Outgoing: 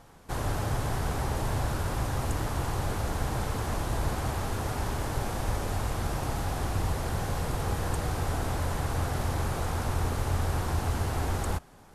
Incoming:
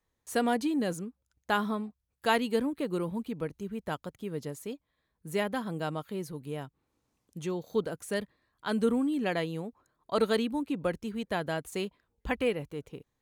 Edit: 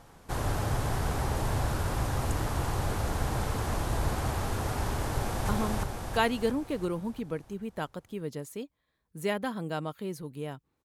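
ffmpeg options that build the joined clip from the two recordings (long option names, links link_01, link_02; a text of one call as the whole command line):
ffmpeg -i cue0.wav -i cue1.wav -filter_complex "[0:a]apad=whole_dur=10.84,atrim=end=10.84,atrim=end=5.492[link_01];[1:a]atrim=start=1.588:end=6.94[link_02];[link_01][link_02]acrossfade=duration=0.004:curve1=hsin:curve2=hsin,asplit=2[link_03][link_04];[link_04]afade=type=in:start_time=5.11:duration=0.01,afade=type=out:start_time=5.49:duration=0.01,aecho=0:1:340|680|1020|1360|1700|2040|2380|2720:1|0.55|0.3025|0.166375|0.0915063|0.0503284|0.0276806|0.0152244[link_05];[link_03][link_05]amix=inputs=2:normalize=0" out.wav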